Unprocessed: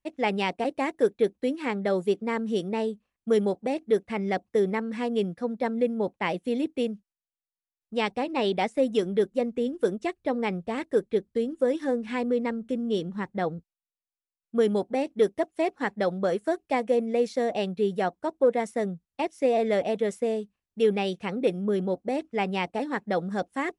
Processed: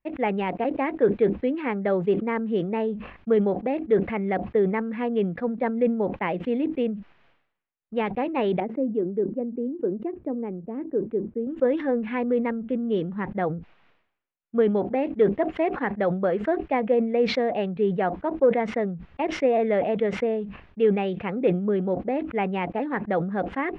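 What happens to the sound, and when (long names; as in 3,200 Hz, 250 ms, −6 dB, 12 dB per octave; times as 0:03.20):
0:08.60–0:11.47: resonant band-pass 300 Hz, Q 1.7
whole clip: de-essing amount 95%; low-pass filter 2,600 Hz 24 dB per octave; level that may fall only so fast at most 83 dB per second; level +2 dB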